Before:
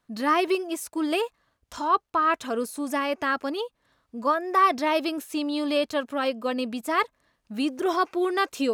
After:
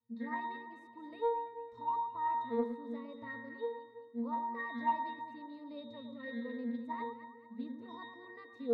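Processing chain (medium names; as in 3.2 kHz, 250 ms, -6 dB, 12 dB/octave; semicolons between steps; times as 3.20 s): dynamic bell 930 Hz, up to +4 dB, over -39 dBFS, Q 6.5; pitch-class resonator A#, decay 0.69 s; saturation -24 dBFS, distortion -31 dB; echo whose repeats swap between lows and highs 110 ms, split 1.2 kHz, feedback 65%, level -6 dB; loudspeaker Doppler distortion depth 0.11 ms; trim +7 dB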